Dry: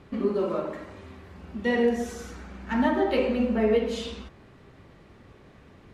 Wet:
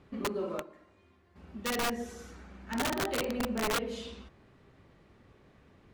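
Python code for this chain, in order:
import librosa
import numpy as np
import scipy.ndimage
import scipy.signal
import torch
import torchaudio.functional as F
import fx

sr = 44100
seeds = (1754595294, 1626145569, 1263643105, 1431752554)

y = fx.comb_fb(x, sr, f0_hz=350.0, decay_s=0.2, harmonics='all', damping=0.0, mix_pct=80, at=(0.61, 1.35), fade=0.02)
y = (np.mod(10.0 ** (17.0 / 20.0) * y + 1.0, 2.0) - 1.0) / 10.0 ** (17.0 / 20.0)
y = y * 10.0 ** (-8.0 / 20.0)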